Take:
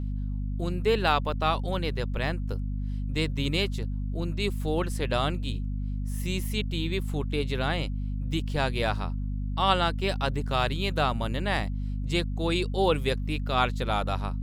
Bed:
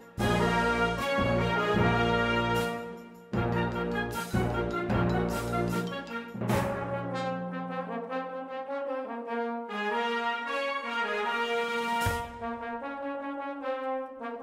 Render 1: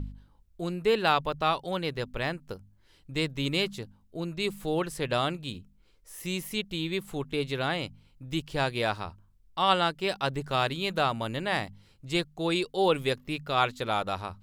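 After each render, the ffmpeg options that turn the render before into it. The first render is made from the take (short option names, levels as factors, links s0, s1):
-af "bandreject=f=50:t=h:w=4,bandreject=f=100:t=h:w=4,bandreject=f=150:t=h:w=4,bandreject=f=200:t=h:w=4,bandreject=f=250:t=h:w=4"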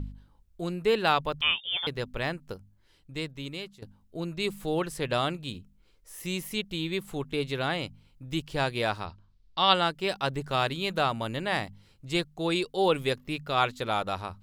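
-filter_complex "[0:a]asettb=1/sr,asplit=3[s0][s1][s2];[s0]atrim=end=1.414[s3];[s1]atrim=start=1.41:end=1.87,asetpts=PTS-STARTPTS,afade=t=in:d=0.004:c=qsin,afade=t=out:st=0.456:d=0.004:c=qsin,lowpass=f=3100:t=q:w=0.5098,lowpass=f=3100:t=q:w=0.6013,lowpass=f=3100:t=q:w=0.9,lowpass=f=3100:t=q:w=2.563,afreqshift=-3700[s4];[s2]atrim=start=1.866[s5];[s3][s4]acrossfade=d=0.004:c1=hsin:c2=qsin[s6];[s6][s5]acrossfade=d=0.004:c1=qsin:c2=hsin,asplit=3[s7][s8][s9];[s7]afade=t=out:st=9.05:d=0.02[s10];[s8]lowpass=f=4400:t=q:w=2.5,afade=t=in:st=9.05:d=0.02,afade=t=out:st=9.73:d=0.02[s11];[s9]afade=t=in:st=9.73:d=0.02[s12];[s10][s11][s12]amix=inputs=3:normalize=0,asplit=2[s13][s14];[s13]atrim=end=3.82,asetpts=PTS-STARTPTS,afade=t=out:st=2.52:d=1.3:silence=0.149624[s15];[s14]atrim=start=3.82,asetpts=PTS-STARTPTS,afade=t=in:d=0.004:c=hsin:silence=0.149624[s16];[s15][s16]concat=n=2:v=0:a=1"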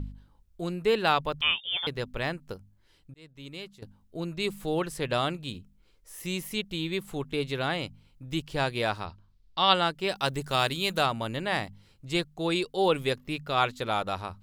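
-filter_complex "[0:a]asplit=3[s0][s1][s2];[s0]afade=t=out:st=10.15:d=0.02[s3];[s1]highshelf=f=4800:g=11,afade=t=in:st=10.15:d=0.02,afade=t=out:st=11.05:d=0.02[s4];[s2]afade=t=in:st=11.05:d=0.02[s5];[s3][s4][s5]amix=inputs=3:normalize=0,asplit=2[s6][s7];[s6]atrim=end=3.14,asetpts=PTS-STARTPTS,afade=t=out:st=3.136:d=0.004:c=hsin[s8];[s7]atrim=start=3.14,asetpts=PTS-STARTPTS,afade=t=in:d=0.62[s9];[s8][s9]concat=n=2:v=0:a=1"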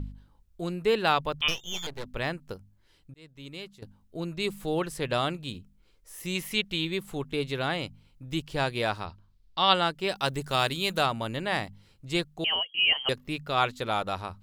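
-filter_complex "[0:a]asettb=1/sr,asplit=3[s0][s1][s2];[s0]atrim=end=1.484[s3];[s1]atrim=start=1.48:end=2.05,asetpts=PTS-STARTPTS,afade=t=in:d=0.004:c=qsin,afade=t=out:st=0.566:d=0.004:c=qsin,aeval=exprs='max(val(0),0)':c=same[s4];[s2]atrim=start=2.046[s5];[s3][s4]acrossfade=d=0.004:c1=hsin:c2=qsin[s6];[s6][s5]acrossfade=d=0.004:c1=qsin:c2=hsin,asettb=1/sr,asplit=3[s7][s8][s9];[s7]atrim=end=6.354[s10];[s8]atrim=start=6.35:end=6.85,asetpts=PTS-STARTPTS,afade=t=in:d=0.004:c=qsin,afade=t=out:st=0.496:d=0.004:c=qsin,equalizer=f=2300:t=o:w=2.2:g=6.5[s11];[s9]atrim=start=6.846[s12];[s10][s11]acrossfade=d=0.004:c1=hsin:c2=qsin[s13];[s13][s12]acrossfade=d=0.004:c1=qsin:c2=hsin,asettb=1/sr,asplit=3[s14][s15][s16];[s14]atrim=end=12.444[s17];[s15]atrim=start=12.44:end=13.09,asetpts=PTS-STARTPTS,afade=t=in:d=0.004:c=qsin,afade=t=out:st=0.646:d=0.004:c=qsin,lowpass=f=2800:t=q:w=0.5098,lowpass=f=2800:t=q:w=0.6013,lowpass=f=2800:t=q:w=0.9,lowpass=f=2800:t=q:w=2.563,afreqshift=-3300[s18];[s16]atrim=start=13.086[s19];[s17][s18]acrossfade=d=0.004:c1=hsin:c2=qsin[s20];[s20][s19]acrossfade=d=0.004:c1=qsin:c2=hsin"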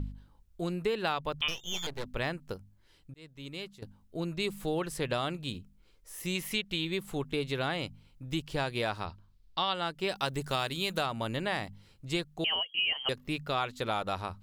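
-af "acompressor=threshold=0.0447:ratio=6"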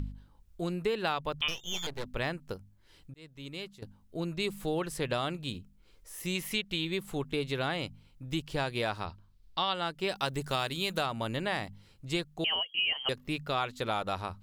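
-af "acompressor=mode=upward:threshold=0.00316:ratio=2.5"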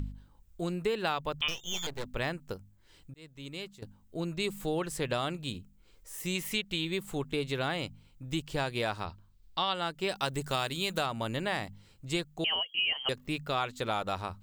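-af "aexciter=amount=1.5:drive=3.2:freq=6900"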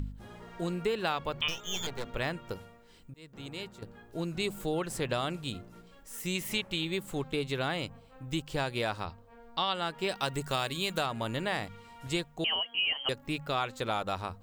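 -filter_complex "[1:a]volume=0.0708[s0];[0:a][s0]amix=inputs=2:normalize=0"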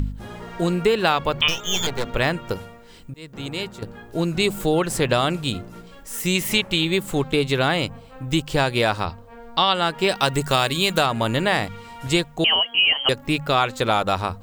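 -af "volume=3.98"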